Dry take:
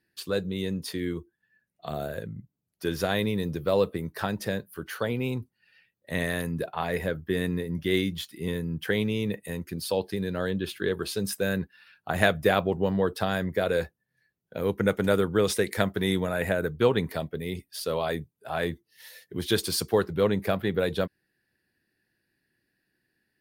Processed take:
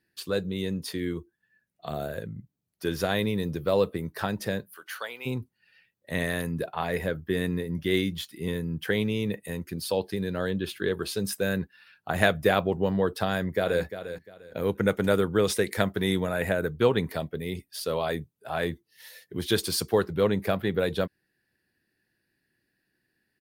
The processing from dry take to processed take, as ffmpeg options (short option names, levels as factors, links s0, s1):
-filter_complex "[0:a]asplit=3[s0][s1][s2];[s0]afade=t=out:st=4.74:d=0.02[s3];[s1]highpass=940,afade=t=in:st=4.74:d=0.02,afade=t=out:st=5.25:d=0.02[s4];[s2]afade=t=in:st=5.25:d=0.02[s5];[s3][s4][s5]amix=inputs=3:normalize=0,asplit=2[s6][s7];[s7]afade=t=in:st=13.31:d=0.01,afade=t=out:st=13.83:d=0.01,aecho=0:1:350|700|1050:0.281838|0.0704596|0.0176149[s8];[s6][s8]amix=inputs=2:normalize=0"